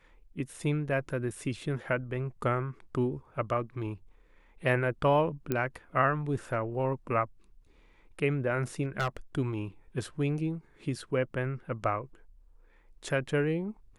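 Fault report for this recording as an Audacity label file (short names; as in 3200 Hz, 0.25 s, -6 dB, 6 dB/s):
5.520000	5.520000	pop -16 dBFS
8.820000	9.170000	clipped -24.5 dBFS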